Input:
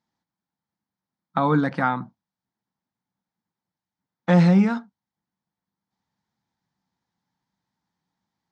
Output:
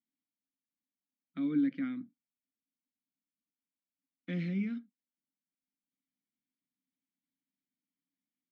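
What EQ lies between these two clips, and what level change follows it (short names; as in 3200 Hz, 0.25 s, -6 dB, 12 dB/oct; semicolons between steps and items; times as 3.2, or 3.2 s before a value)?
vowel filter i; -2.5 dB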